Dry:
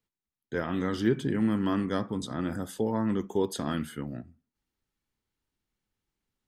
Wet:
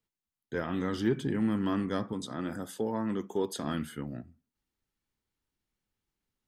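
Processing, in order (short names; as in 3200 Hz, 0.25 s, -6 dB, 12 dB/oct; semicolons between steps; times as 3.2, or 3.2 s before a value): 2.13–3.64 HPF 180 Hz 6 dB/oct; in parallel at -8.5 dB: soft clip -22.5 dBFS, distortion -14 dB; on the sum: gain -4.5 dB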